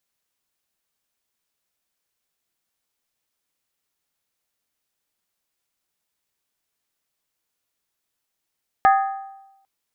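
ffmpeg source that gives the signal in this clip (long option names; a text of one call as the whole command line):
ffmpeg -f lavfi -i "aevalsrc='0.316*pow(10,-3*t/0.96)*sin(2*PI*781*t)+0.158*pow(10,-3*t/0.76)*sin(2*PI*1244.9*t)+0.0794*pow(10,-3*t/0.657)*sin(2*PI*1668.2*t)+0.0398*pow(10,-3*t/0.634)*sin(2*PI*1793.2*t)+0.02*pow(10,-3*t/0.589)*sin(2*PI*2072*t)':duration=0.8:sample_rate=44100" out.wav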